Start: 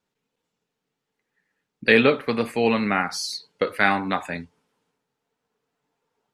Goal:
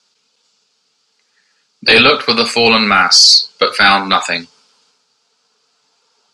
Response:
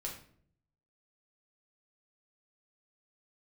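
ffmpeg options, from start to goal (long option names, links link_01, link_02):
-af "crystalizer=i=8:c=0,highpass=frequency=140:width=0.5412,highpass=frequency=140:width=1.3066,equalizer=frequency=160:width_type=q:width=4:gain=-8,equalizer=frequency=310:width_type=q:width=4:gain=-8,equalizer=frequency=1300:width_type=q:width=4:gain=5,equalizer=frequency=1900:width_type=q:width=4:gain=-7,equalizer=frequency=4700:width_type=q:width=4:gain=9,lowpass=frequency=6800:width=0.5412,lowpass=frequency=6800:width=1.3066,apsyclip=11dB,volume=-2dB"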